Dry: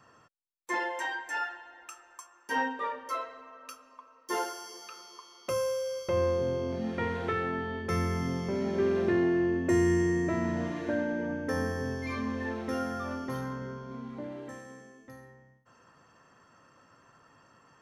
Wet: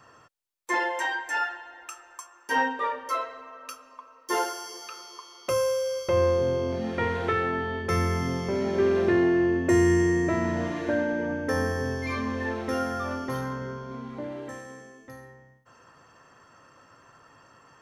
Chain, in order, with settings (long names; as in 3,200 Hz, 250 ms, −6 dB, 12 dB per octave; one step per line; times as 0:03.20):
parametric band 200 Hz −5 dB 0.85 octaves
level +5.5 dB